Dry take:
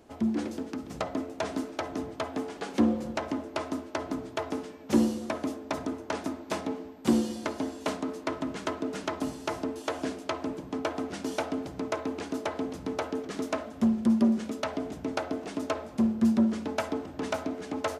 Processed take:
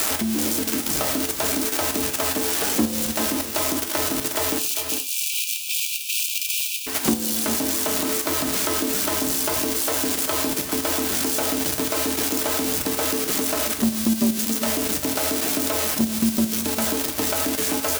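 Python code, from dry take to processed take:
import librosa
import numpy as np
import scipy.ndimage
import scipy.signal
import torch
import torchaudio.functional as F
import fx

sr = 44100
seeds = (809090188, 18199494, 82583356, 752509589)

y = x + 0.5 * 10.0 ** (-18.0 / 20.0) * np.diff(np.sign(x), prepend=np.sign(x[:1]))
y = fx.level_steps(y, sr, step_db=11)
y = fx.brickwall_highpass(y, sr, low_hz=2300.0, at=(4.58, 6.86), fade=0.02)
y = y + 10.0 ** (-13.5 / 20.0) * np.pad(y, (int(397 * sr / 1000.0), 0))[:len(y)]
y = fx.rev_gated(y, sr, seeds[0], gate_ms=100, shape='falling', drr_db=6.0)
y = fx.band_squash(y, sr, depth_pct=70)
y = F.gain(torch.from_numpy(y), 8.5).numpy()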